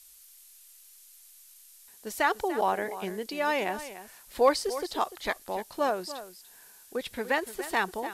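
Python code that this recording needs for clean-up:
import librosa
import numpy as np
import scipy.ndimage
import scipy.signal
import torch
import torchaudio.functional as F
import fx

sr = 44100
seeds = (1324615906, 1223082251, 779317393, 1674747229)

y = fx.noise_reduce(x, sr, print_start_s=0.72, print_end_s=1.22, reduce_db=20.0)
y = fx.fix_echo_inverse(y, sr, delay_ms=293, level_db=-13.5)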